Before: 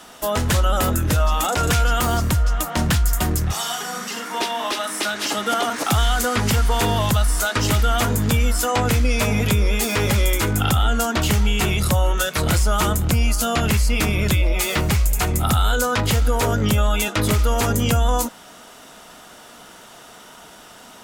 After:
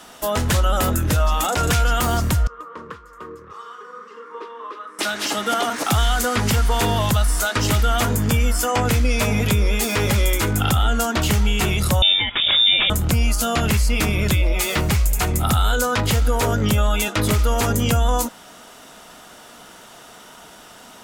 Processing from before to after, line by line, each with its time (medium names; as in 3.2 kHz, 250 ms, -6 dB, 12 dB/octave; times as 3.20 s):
2.47–4.99 s: two resonant band-passes 720 Hz, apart 1.3 oct
8.17–8.85 s: band-stop 3.9 kHz, Q 7
12.02–12.90 s: frequency inversion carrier 3.6 kHz